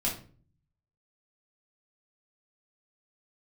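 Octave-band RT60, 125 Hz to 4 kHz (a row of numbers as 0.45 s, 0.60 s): 1.0 s, 0.65 s, 0.50 s, 0.35 s, 0.35 s, 0.30 s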